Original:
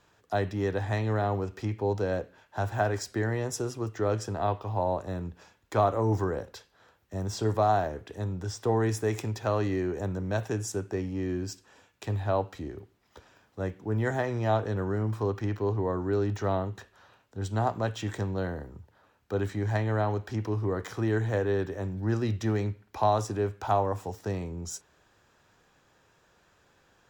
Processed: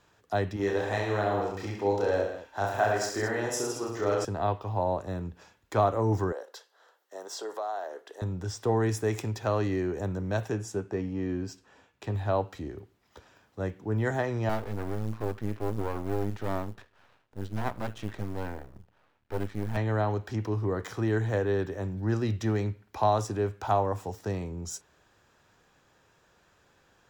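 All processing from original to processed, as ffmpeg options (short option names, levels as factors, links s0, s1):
-filter_complex "[0:a]asettb=1/sr,asplit=3[s0][s1][s2];[s0]atrim=end=0.564[s3];[s1]atrim=start=0.56:end=4.25,asetpts=PTS-STARTPTS,afade=t=in:d=0.004:c=qsin,afade=t=out:st=3.686:d=0.004:c=qsin,equalizer=f=130:w=0.8:g=-12,aecho=1:1:30|66|109.2|161|223.2:0.794|0.631|0.501|0.398|0.316,atrim=end_sample=162729[s4];[s2]atrim=start=4.246[s5];[s3][s4]acrossfade=d=0.004:c1=hsin:c2=qsin[s6];[s6][s5]acrossfade=d=0.004:c1=qsin:c2=hsin,asettb=1/sr,asplit=3[s7][s8][s9];[s7]atrim=end=6.324[s10];[s8]atrim=start=6.32:end=8.22,asetpts=PTS-STARTPTS,afade=t=in:d=0.004:c=qsin,afade=t=out:st=1.896:d=0.004:c=qsin,highpass=f=420:w=0.5412,highpass=f=420:w=1.3066,equalizer=f=2400:w=4.7:g=-9.5,acompressor=threshold=0.02:ratio=2.5:attack=3.2:release=140:knee=1:detection=peak[s11];[s9]atrim=start=8.216[s12];[s10][s11]acrossfade=d=0.004:c1=hsin:c2=qsin[s13];[s13][s12]acrossfade=d=0.004:c1=qsin:c2=hsin,asettb=1/sr,asplit=3[s14][s15][s16];[s14]atrim=end=10.514[s17];[s15]atrim=start=10.51:end=12.15,asetpts=PTS-STARTPTS,afade=t=in:d=0.004:c=qsin,afade=t=out:st=1.636:d=0.004:c=qsin,highshelf=f=4400:g=-9.5,asplit=2[s18][s19];[s19]adelay=15,volume=0.282[s20];[s18][s20]amix=inputs=2:normalize=0,atrim=end_sample=72324[s21];[s16]atrim=start=12.146[s22];[s17][s21]acrossfade=d=0.004:c1=hsin:c2=qsin[s23];[s23][s22]acrossfade=d=0.004:c1=qsin:c2=hsin,asettb=1/sr,asplit=3[s24][s25][s26];[s24]atrim=end=14.494[s27];[s25]atrim=start=14.49:end=19.77,asetpts=PTS-STARTPTS,afade=t=in:d=0.004:c=qsin,afade=t=out:st=5.276:d=0.004:c=qsin,lowpass=3600,aeval=exprs='max(val(0),0)':c=same,acrusher=bits=7:mode=log:mix=0:aa=0.000001[s28];[s26]atrim=start=19.766[s29];[s27][s28]acrossfade=d=0.004:c1=hsin:c2=qsin[s30];[s30][s29]acrossfade=d=0.004:c1=qsin:c2=hsin"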